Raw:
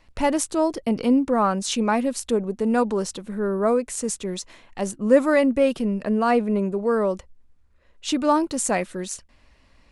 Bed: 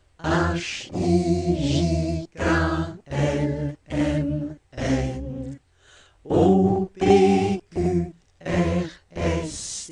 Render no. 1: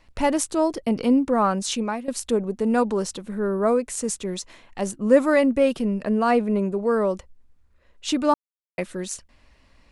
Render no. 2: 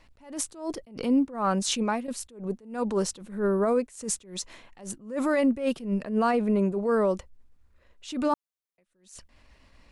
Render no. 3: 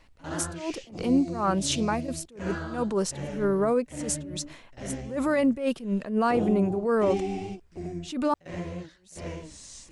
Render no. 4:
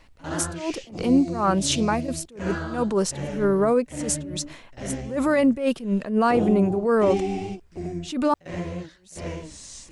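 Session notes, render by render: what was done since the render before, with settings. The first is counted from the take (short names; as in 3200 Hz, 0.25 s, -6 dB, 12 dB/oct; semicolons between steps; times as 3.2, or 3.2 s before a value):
1.66–2.08 fade out, to -15.5 dB; 8.34–8.78 mute
limiter -16 dBFS, peak gain reduction 11 dB; attack slew limiter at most 130 dB/s
add bed -13.5 dB
gain +4 dB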